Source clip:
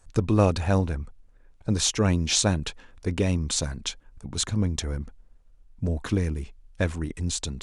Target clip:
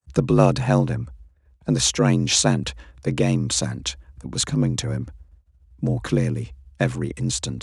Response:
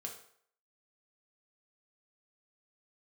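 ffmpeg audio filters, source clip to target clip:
-af "agate=range=-33dB:threshold=-45dB:ratio=3:detection=peak,afreqshift=43,volume=4dB"

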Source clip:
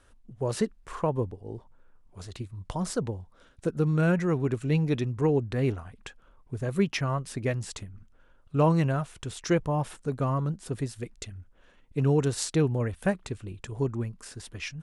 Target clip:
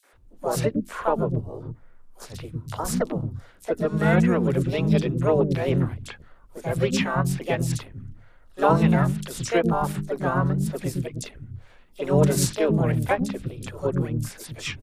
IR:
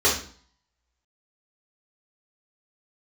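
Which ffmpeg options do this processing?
-filter_complex "[0:a]bandreject=frequency=50:width_type=h:width=6,bandreject=frequency=100:width_type=h:width=6,bandreject=frequency=150:width_type=h:width=6,bandreject=frequency=200:width_type=h:width=6,bandreject=frequency=250:width_type=h:width=6,bandreject=frequency=300:width_type=h:width=6,acrossover=split=290|3600[link_01][link_02][link_03];[link_02]adelay=40[link_04];[link_01]adelay=150[link_05];[link_05][link_04][link_03]amix=inputs=3:normalize=0,asplit=3[link_06][link_07][link_08];[link_07]asetrate=22050,aresample=44100,atempo=2,volume=-17dB[link_09];[link_08]asetrate=58866,aresample=44100,atempo=0.749154,volume=-3dB[link_10];[link_06][link_09][link_10]amix=inputs=3:normalize=0,volume=4.5dB"

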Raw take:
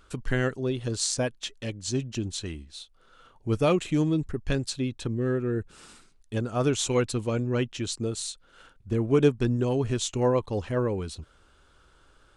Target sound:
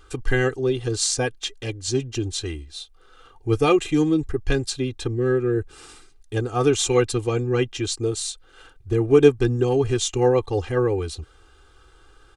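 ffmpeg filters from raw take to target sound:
ffmpeg -i in.wav -af "aecho=1:1:2.5:0.88,volume=3dB" out.wav

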